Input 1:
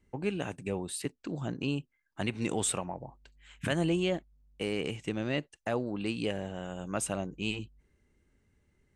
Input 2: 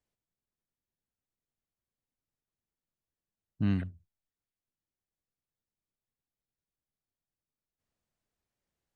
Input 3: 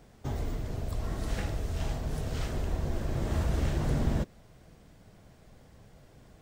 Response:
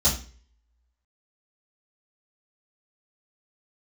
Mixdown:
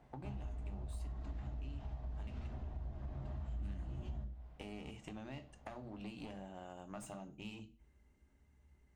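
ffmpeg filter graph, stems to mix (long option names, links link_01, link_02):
-filter_complex "[0:a]acompressor=threshold=-45dB:ratio=2,aeval=exprs='clip(val(0),-1,0.00531)':channel_layout=same,volume=-5dB,asplit=3[link_01][link_02][link_03];[link_01]atrim=end=2.47,asetpts=PTS-STARTPTS,afade=type=out:start_time=2.466:duration=0.004:curve=hsin[link_04];[link_02]atrim=start=2.47:end=3.16,asetpts=PTS-STARTPTS,volume=0[link_05];[link_03]atrim=start=3.16,asetpts=PTS-STARTPTS,afade=type=in:duration=0.004:curve=hsin[link_06];[link_04][link_05][link_06]concat=n=3:v=0:a=1,asplit=2[link_07][link_08];[link_08]volume=-21dB[link_09];[1:a]volume=-11dB[link_10];[2:a]lowpass=3100,volume=-10.5dB,asplit=2[link_11][link_12];[link_12]volume=-22dB[link_13];[link_07][link_11]amix=inputs=2:normalize=0,equalizer=frequency=860:width_type=o:width=0.87:gain=8.5,acompressor=threshold=-44dB:ratio=6,volume=0dB[link_14];[3:a]atrim=start_sample=2205[link_15];[link_09][link_13]amix=inputs=2:normalize=0[link_16];[link_16][link_15]afir=irnorm=-1:irlink=0[link_17];[link_10][link_14][link_17]amix=inputs=3:normalize=0,acompressor=threshold=-41dB:ratio=4"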